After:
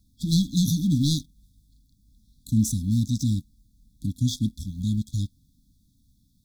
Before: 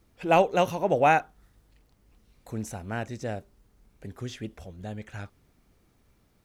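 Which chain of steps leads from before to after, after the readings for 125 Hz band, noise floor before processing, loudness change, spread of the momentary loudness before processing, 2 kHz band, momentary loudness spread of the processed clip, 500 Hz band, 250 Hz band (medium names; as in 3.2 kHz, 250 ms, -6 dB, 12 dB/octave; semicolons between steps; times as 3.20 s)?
+13.0 dB, -66 dBFS, +1.5 dB, 20 LU, under -40 dB, 9 LU, under -25 dB, +10.5 dB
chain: waveshaping leveller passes 2; brick-wall FIR band-stop 300–3300 Hz; trim +6 dB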